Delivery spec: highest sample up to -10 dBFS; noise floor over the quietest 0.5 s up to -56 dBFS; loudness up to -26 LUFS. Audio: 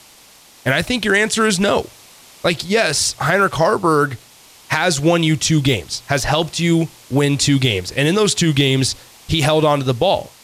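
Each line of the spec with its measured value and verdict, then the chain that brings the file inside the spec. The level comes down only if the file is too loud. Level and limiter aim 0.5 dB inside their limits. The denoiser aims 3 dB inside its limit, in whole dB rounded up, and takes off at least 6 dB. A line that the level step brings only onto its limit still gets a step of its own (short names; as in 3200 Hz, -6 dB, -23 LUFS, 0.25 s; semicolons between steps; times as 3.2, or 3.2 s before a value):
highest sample -5.0 dBFS: fail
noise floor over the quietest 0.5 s -46 dBFS: fail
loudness -16.5 LUFS: fail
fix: denoiser 6 dB, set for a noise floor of -46 dBFS; gain -10 dB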